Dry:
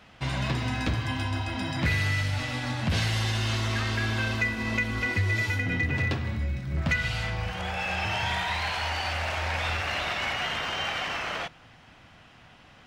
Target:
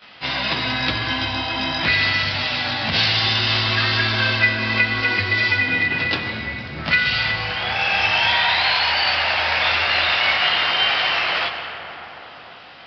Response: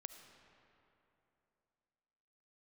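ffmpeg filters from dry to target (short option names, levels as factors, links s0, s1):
-filter_complex "[0:a]aemphasis=mode=production:type=riaa,asplit=2[s0][s1];[1:a]atrim=start_sample=2205,asetrate=24255,aresample=44100,adelay=19[s2];[s1][s2]afir=irnorm=-1:irlink=0,volume=3.35[s3];[s0][s3]amix=inputs=2:normalize=0,aresample=11025,aresample=44100"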